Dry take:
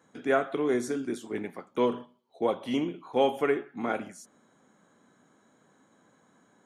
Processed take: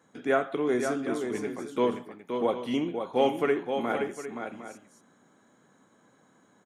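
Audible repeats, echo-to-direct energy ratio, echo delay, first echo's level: 2, -5.5 dB, 522 ms, -6.5 dB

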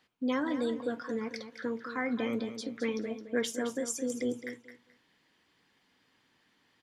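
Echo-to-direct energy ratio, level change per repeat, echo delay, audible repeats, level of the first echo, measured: -10.5 dB, -13.0 dB, 216 ms, 2, -10.5 dB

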